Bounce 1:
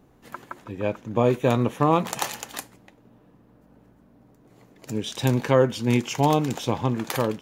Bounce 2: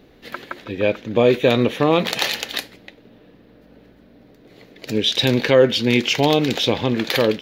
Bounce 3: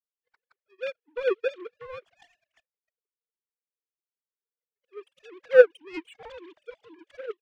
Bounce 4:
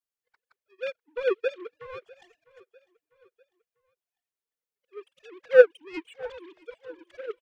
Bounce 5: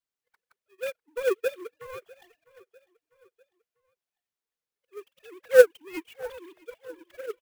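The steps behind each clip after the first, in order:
graphic EQ with 10 bands 125 Hz −5 dB, 500 Hz +5 dB, 1,000 Hz −8 dB, 2,000 Hz +6 dB, 4,000 Hz +12 dB, 8,000 Hz −10 dB; in parallel at +3 dB: brickwall limiter −14.5 dBFS, peak gain reduction 10 dB; on the sum: level −1 dB
three sine waves on the formant tracks; power curve on the samples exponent 2; level −3 dB
repeating echo 649 ms, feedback 50%, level −23 dB
converter with an unsteady clock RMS 0.022 ms

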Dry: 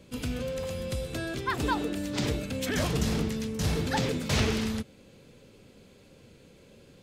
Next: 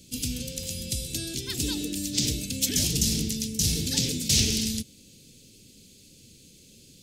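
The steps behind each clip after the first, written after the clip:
drawn EQ curve 300 Hz 0 dB, 1,100 Hz −25 dB, 2,700 Hz +2 dB, 5,600 Hz +14 dB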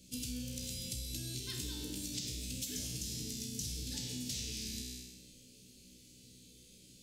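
tuned comb filter 62 Hz, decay 1.1 s, harmonics all, mix 90%
downward compressor 12 to 1, threshold −43 dBFS, peak gain reduction 13.5 dB
level +6 dB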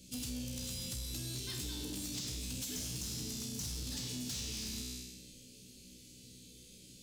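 soft clipping −38 dBFS, distortion −13 dB
level +3 dB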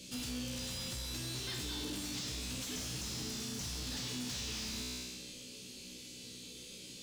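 mid-hump overdrive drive 17 dB, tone 3,100 Hz, clips at −34.5 dBFS
level +2.5 dB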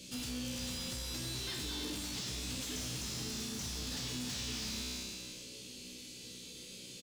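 single-tap delay 328 ms −9 dB

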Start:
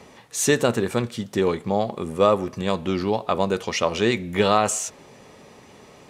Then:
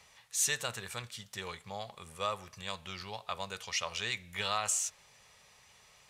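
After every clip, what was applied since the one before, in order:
guitar amp tone stack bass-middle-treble 10-0-10
level −4.5 dB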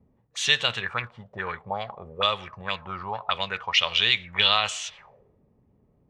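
envelope-controlled low-pass 240–3,300 Hz up, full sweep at −34.5 dBFS
level +7.5 dB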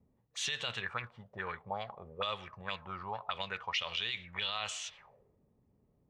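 brickwall limiter −15.5 dBFS, peak gain reduction 11 dB
level −8 dB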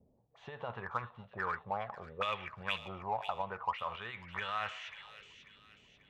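auto-filter low-pass saw up 0.36 Hz 620–2,900 Hz
in parallel at −7 dB: soft clipping −33 dBFS, distortion −9 dB
on the sum: delay with a high-pass on its return 541 ms, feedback 45%, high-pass 2,900 Hz, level −7 dB
level −2.5 dB

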